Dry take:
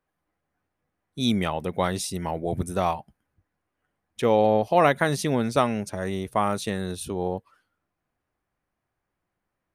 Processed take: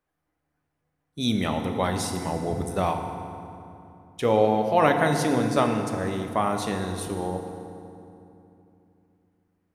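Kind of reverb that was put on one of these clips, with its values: FDN reverb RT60 2.8 s, low-frequency decay 1.4×, high-frequency decay 0.65×, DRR 4 dB; trim -1.5 dB

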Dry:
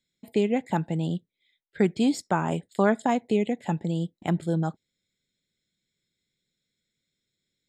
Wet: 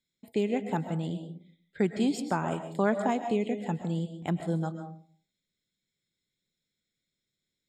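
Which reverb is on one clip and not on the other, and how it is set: algorithmic reverb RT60 0.49 s, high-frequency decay 0.35×, pre-delay 90 ms, DRR 8 dB; trim -4.5 dB

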